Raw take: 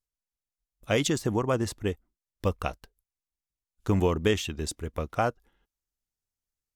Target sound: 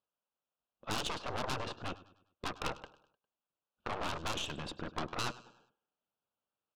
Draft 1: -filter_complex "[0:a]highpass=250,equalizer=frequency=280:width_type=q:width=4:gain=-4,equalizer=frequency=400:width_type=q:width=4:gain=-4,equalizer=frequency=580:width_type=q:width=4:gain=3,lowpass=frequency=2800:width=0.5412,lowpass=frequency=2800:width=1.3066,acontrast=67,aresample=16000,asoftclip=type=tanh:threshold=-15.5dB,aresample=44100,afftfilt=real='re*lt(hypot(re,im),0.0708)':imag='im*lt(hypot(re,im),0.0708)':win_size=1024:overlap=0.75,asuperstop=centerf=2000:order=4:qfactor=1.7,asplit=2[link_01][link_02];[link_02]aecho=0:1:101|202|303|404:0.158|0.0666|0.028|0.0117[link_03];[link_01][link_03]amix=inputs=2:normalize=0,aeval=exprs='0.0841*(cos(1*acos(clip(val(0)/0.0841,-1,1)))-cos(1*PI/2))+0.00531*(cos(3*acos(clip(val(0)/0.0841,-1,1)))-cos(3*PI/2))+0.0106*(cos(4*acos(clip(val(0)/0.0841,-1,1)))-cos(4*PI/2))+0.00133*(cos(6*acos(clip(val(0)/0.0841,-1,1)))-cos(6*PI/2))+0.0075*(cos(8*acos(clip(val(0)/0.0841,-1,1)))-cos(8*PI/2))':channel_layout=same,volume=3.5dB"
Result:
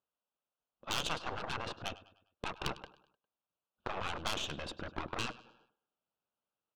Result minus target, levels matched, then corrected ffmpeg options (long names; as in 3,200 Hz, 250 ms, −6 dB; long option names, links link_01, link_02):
soft clipping: distortion −9 dB
-filter_complex "[0:a]highpass=250,equalizer=frequency=280:width_type=q:width=4:gain=-4,equalizer=frequency=400:width_type=q:width=4:gain=-4,equalizer=frequency=580:width_type=q:width=4:gain=3,lowpass=frequency=2800:width=0.5412,lowpass=frequency=2800:width=1.3066,acontrast=67,aresample=16000,asoftclip=type=tanh:threshold=-27.5dB,aresample=44100,afftfilt=real='re*lt(hypot(re,im),0.0708)':imag='im*lt(hypot(re,im),0.0708)':win_size=1024:overlap=0.75,asuperstop=centerf=2000:order=4:qfactor=1.7,asplit=2[link_01][link_02];[link_02]aecho=0:1:101|202|303|404:0.158|0.0666|0.028|0.0117[link_03];[link_01][link_03]amix=inputs=2:normalize=0,aeval=exprs='0.0841*(cos(1*acos(clip(val(0)/0.0841,-1,1)))-cos(1*PI/2))+0.00531*(cos(3*acos(clip(val(0)/0.0841,-1,1)))-cos(3*PI/2))+0.0106*(cos(4*acos(clip(val(0)/0.0841,-1,1)))-cos(4*PI/2))+0.00133*(cos(6*acos(clip(val(0)/0.0841,-1,1)))-cos(6*PI/2))+0.0075*(cos(8*acos(clip(val(0)/0.0841,-1,1)))-cos(8*PI/2))':channel_layout=same,volume=3.5dB"